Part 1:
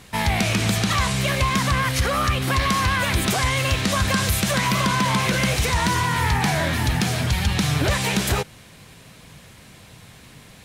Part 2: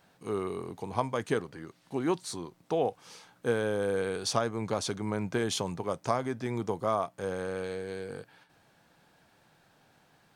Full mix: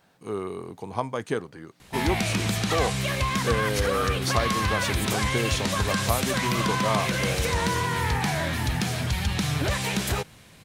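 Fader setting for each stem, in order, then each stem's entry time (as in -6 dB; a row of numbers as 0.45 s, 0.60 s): -5.0 dB, +1.5 dB; 1.80 s, 0.00 s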